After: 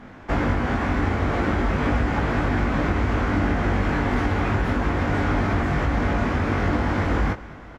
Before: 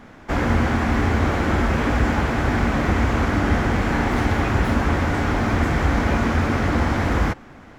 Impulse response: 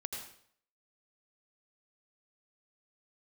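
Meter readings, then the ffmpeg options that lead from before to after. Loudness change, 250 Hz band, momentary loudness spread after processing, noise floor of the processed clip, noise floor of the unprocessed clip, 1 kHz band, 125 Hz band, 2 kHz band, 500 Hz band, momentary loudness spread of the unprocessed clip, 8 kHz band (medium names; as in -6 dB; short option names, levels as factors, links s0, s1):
-2.5 dB, -2.5 dB, 1 LU, -41 dBFS, -44 dBFS, -2.5 dB, -2.5 dB, -2.5 dB, -2.0 dB, 1 LU, no reading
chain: -filter_complex "[0:a]acompressor=threshold=0.112:ratio=6,highshelf=f=6400:g=-12,asplit=2[s0][s1];[s1]adelay=20,volume=0.596[s2];[s0][s2]amix=inputs=2:normalize=0,aecho=1:1:210|420|630|840|1050:0.106|0.0604|0.0344|0.0196|0.0112"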